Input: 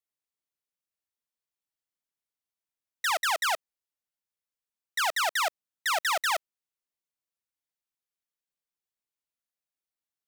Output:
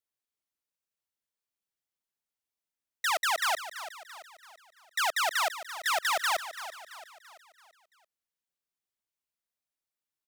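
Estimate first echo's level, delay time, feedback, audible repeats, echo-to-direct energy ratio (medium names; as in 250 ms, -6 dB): -12.5 dB, 336 ms, 46%, 4, -11.5 dB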